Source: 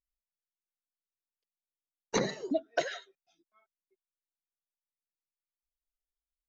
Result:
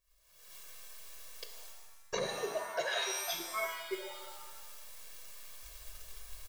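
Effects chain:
camcorder AGC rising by 55 dB per second
low-shelf EQ 240 Hz −8 dB
comb filter 1.8 ms, depth 97%
transient designer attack +6 dB, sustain −3 dB
low-shelf EQ 120 Hz +5 dB
reversed playback
downward compressor 8 to 1, threshold −44 dBFS, peak gain reduction 28 dB
reversed playback
reverb with rising layers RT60 1.1 s, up +7 semitones, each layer −2 dB, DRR 5.5 dB
level +9 dB

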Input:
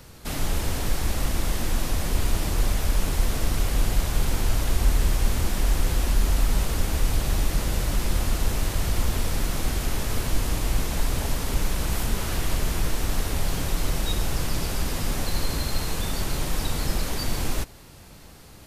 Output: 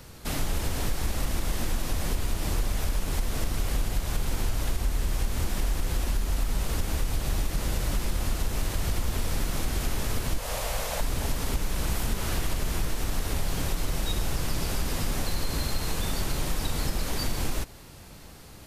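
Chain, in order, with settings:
0:10.38–0:11.01: low shelf with overshoot 420 Hz −8.5 dB, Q 3
downward compressor, threshold −22 dBFS, peak gain reduction 8.5 dB

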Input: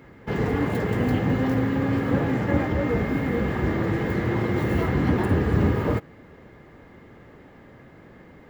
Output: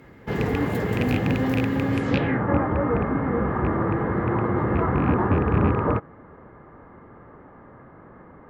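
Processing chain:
loose part that buzzes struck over −19 dBFS, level −16 dBFS
low-pass filter sweep 16,000 Hz → 1,200 Hz, 0:01.90–0:02.42

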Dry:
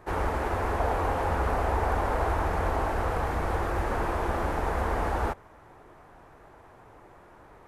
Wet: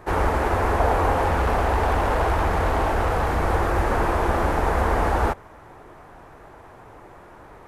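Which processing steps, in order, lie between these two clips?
0:01.25–0:03.43: gain into a clipping stage and back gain 23.5 dB
level +7 dB

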